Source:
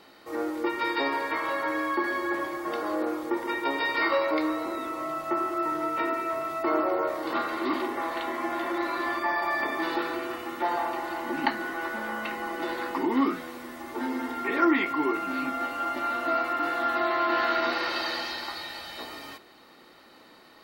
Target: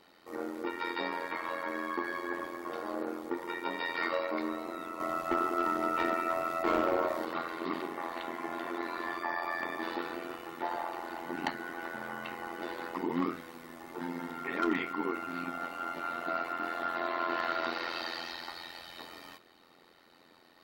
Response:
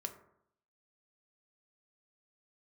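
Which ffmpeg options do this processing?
-filter_complex "[0:a]asettb=1/sr,asplit=3[link_01][link_02][link_03];[link_01]atrim=end=5.004[link_04];[link_02]atrim=start=5:end=7.25,asetpts=PTS-STARTPTS,afade=type=in:duration=0.004:curve=qsin,afade=type=out:start_time=2.246:duration=0.004:curve=qsin,acontrast=44[link_05];[link_03]atrim=start=7.246[link_06];[link_04][link_05]acrossfade=duration=0.004:curve1=hsin:curve2=qsin[link_07];[link_07][link_06]acrossfade=duration=0.004:curve1=qsin:curve2=hsin,asoftclip=type=hard:threshold=-16.5dB,tremolo=f=86:d=0.824,volume=-4dB"

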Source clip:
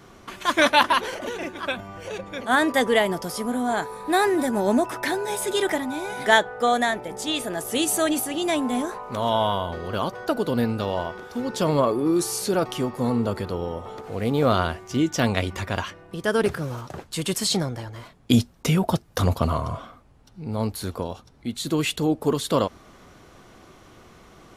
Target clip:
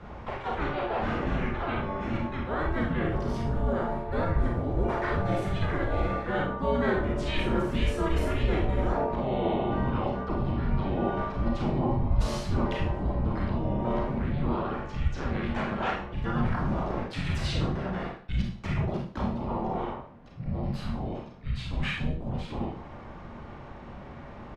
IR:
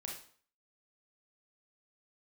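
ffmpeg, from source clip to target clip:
-filter_complex "[0:a]lowpass=2000,lowshelf=frequency=110:gain=-9.5,areverse,acompressor=threshold=-31dB:ratio=8,areverse,alimiter=level_in=4.5dB:limit=-24dB:level=0:latency=1:release=93,volume=-4.5dB,acrossover=split=350[link_01][link_02];[link_02]dynaudnorm=framelen=670:gausssize=17:maxgain=3dB[link_03];[link_01][link_03]amix=inputs=2:normalize=0,asplit=3[link_04][link_05][link_06];[link_05]asetrate=33038,aresample=44100,atempo=1.33484,volume=-3dB[link_07];[link_06]asetrate=52444,aresample=44100,atempo=0.840896,volume=-4dB[link_08];[link_04][link_07][link_08]amix=inputs=3:normalize=0,afreqshift=-300[link_09];[1:a]atrim=start_sample=2205[link_10];[link_09][link_10]afir=irnorm=-1:irlink=0,volume=8dB"

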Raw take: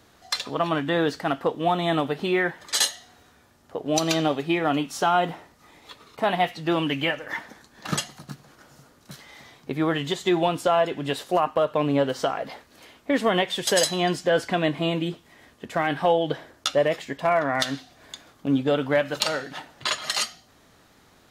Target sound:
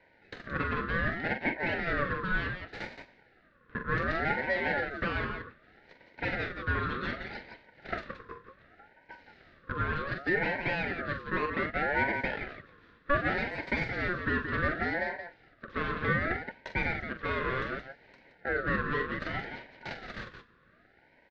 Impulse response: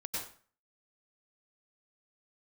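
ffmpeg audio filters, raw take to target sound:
-filter_complex "[0:a]aemphasis=mode=reproduction:type=75kf,aeval=exprs='abs(val(0))':channel_layout=same,asplit=2[link_01][link_02];[link_02]aecho=0:1:43.73|172:0.355|0.355[link_03];[link_01][link_03]amix=inputs=2:normalize=0,asoftclip=type=tanh:threshold=-12.5dB,highpass=frequency=260:width=0.5412,highpass=frequency=260:width=1.3066,equalizer=frequency=280:width_type=q:width=4:gain=10,equalizer=frequency=670:width_type=q:width=4:gain=7,equalizer=frequency=960:width_type=q:width=4:gain=6,equalizer=frequency=1500:width_type=q:width=4:gain=-7,equalizer=frequency=2200:width_type=q:width=4:gain=-10,lowpass=frequency=2800:width=0.5412,lowpass=frequency=2800:width=1.3066,aeval=exprs='val(0)*sin(2*PI*990*n/s+990*0.25/0.66*sin(2*PI*0.66*n/s))':channel_layout=same"

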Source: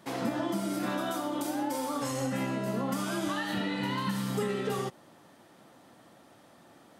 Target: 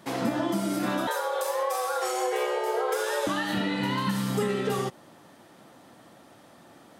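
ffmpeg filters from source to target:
ffmpeg -i in.wav -filter_complex "[0:a]asettb=1/sr,asplit=3[link_01][link_02][link_03];[link_01]atrim=end=1.074[link_04];[link_02]atrim=start=1.07:end=3.27,asetpts=PTS-STARTPTS,afade=type=in:duration=0.004:curve=qsin,afade=type=out:start_time=2.196:duration=0.004:curve=qsin,afreqshift=240[link_05];[link_03]atrim=start=3.266[link_06];[link_04][link_05]acrossfade=duration=0.004:curve1=hsin:curve2=qsin[link_07];[link_07][link_06]acrossfade=duration=0.004:curve1=qsin:curve2=hsin,volume=4dB" out.wav

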